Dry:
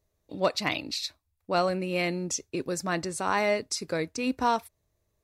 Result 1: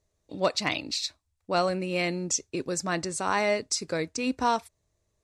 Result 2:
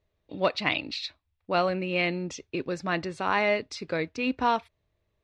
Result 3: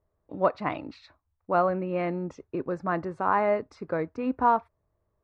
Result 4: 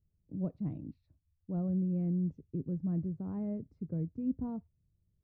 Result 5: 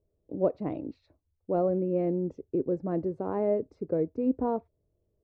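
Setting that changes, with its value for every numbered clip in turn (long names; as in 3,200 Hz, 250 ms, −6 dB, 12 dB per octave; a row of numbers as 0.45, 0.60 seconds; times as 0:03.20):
low-pass with resonance, frequency: 7,900, 3,100, 1,200, 170, 450 Hertz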